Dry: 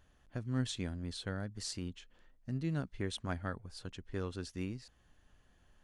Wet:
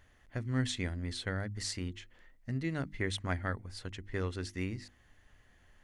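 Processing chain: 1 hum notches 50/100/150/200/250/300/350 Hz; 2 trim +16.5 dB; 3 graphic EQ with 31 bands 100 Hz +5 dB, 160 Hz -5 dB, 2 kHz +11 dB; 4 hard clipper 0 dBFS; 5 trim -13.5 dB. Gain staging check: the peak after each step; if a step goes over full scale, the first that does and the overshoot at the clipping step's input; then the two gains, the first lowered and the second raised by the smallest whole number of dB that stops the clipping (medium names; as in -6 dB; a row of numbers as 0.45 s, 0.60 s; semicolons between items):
-21.5 dBFS, -5.0 dBFS, -4.0 dBFS, -4.0 dBFS, -17.5 dBFS; nothing clips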